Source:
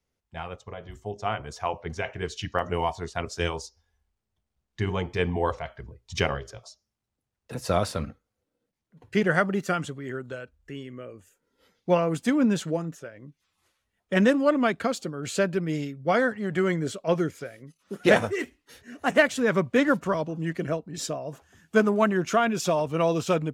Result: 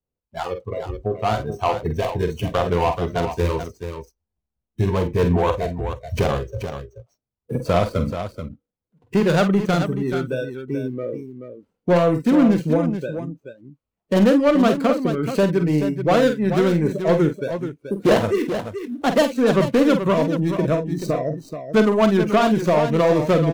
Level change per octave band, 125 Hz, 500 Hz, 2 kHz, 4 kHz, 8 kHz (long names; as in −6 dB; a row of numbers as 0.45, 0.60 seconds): +9.0, +7.0, −0.5, +4.0, −1.0 decibels